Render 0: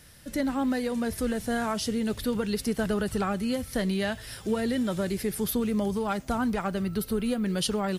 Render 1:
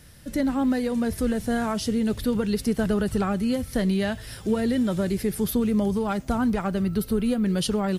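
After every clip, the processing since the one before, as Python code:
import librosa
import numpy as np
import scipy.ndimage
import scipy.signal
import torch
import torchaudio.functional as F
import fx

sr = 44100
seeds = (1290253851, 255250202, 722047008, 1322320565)

y = fx.low_shelf(x, sr, hz=430.0, db=6.0)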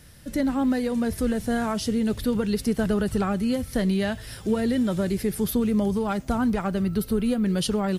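y = x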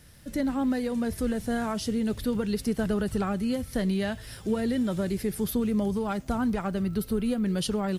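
y = fx.dmg_crackle(x, sr, seeds[0], per_s=46.0, level_db=-42.0)
y = y * librosa.db_to_amplitude(-3.5)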